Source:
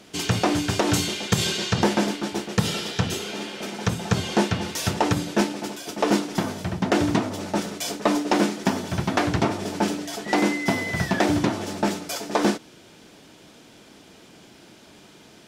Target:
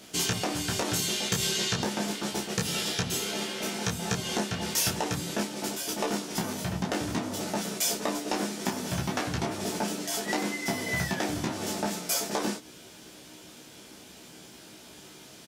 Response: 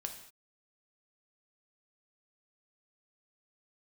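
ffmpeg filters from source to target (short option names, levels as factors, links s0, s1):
-filter_complex "[0:a]acompressor=threshold=0.0562:ratio=6,crystalizer=i=1.5:c=0,asplit=2[s0][s1];[s1]aecho=0:1:16|29:0.668|0.596[s2];[s0][s2]amix=inputs=2:normalize=0,volume=0.631"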